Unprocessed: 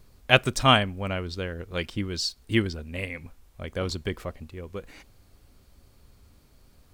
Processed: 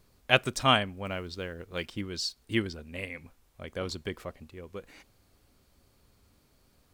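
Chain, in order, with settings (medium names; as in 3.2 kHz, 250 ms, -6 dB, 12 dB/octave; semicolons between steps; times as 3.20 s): bass shelf 94 Hz -9 dB; 1.04–2.01 s: modulation noise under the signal 34 dB; trim -4 dB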